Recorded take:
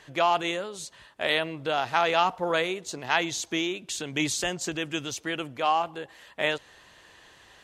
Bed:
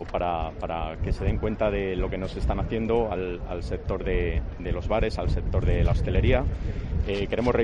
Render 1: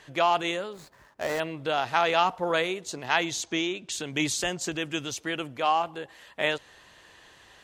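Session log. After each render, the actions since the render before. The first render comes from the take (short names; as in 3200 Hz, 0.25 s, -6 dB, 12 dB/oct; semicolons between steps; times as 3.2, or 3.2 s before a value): 0.73–1.4 median filter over 15 samples; 3.43–3.92 LPF 8000 Hz 24 dB/oct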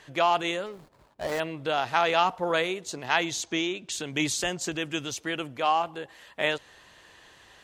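0.66–1.32 median filter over 25 samples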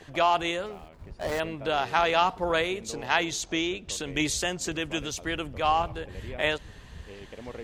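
add bed -17.5 dB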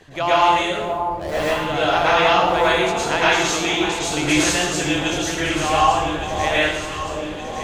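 echo with dull and thin repeats by turns 0.583 s, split 990 Hz, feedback 72%, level -6.5 dB; plate-style reverb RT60 0.86 s, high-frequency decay 0.9×, pre-delay 95 ms, DRR -8.5 dB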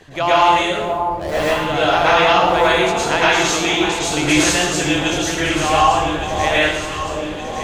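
gain +3 dB; limiter -3 dBFS, peak gain reduction 2.5 dB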